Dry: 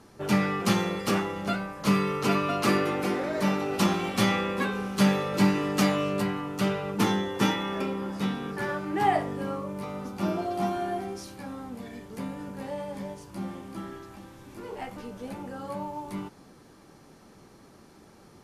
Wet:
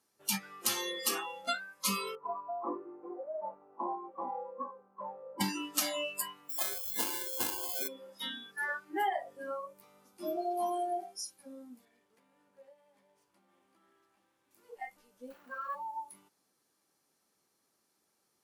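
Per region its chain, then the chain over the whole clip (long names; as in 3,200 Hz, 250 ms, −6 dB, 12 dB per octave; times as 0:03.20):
0:02.15–0:05.41: Chebyshev low-pass filter 1,000 Hz, order 3 + low-shelf EQ 270 Hz −9 dB
0:06.49–0:07.88: sample-rate reduction 1,900 Hz + double-tracking delay 40 ms −7 dB
0:11.85–0:14.51: variable-slope delta modulation 64 kbit/s + bass and treble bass −5 dB, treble −13 dB + downward compressor 10 to 1, threshold −38 dBFS
0:15.30–0:15.75: lower of the sound and its delayed copy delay 0.7 ms + mid-hump overdrive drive 12 dB, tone 1,900 Hz, clips at −26.5 dBFS + envelope flattener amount 50%
whole clip: RIAA equalisation recording; noise reduction from a noise print of the clip's start 24 dB; downward compressor 10 to 1, threshold −28 dBFS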